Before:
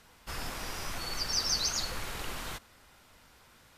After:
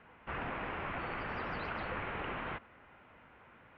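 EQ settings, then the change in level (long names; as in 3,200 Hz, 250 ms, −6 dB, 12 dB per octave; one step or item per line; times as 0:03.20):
high-pass filter 140 Hz 6 dB per octave
Butterworth low-pass 2,800 Hz 36 dB per octave
high-frequency loss of the air 250 metres
+4.0 dB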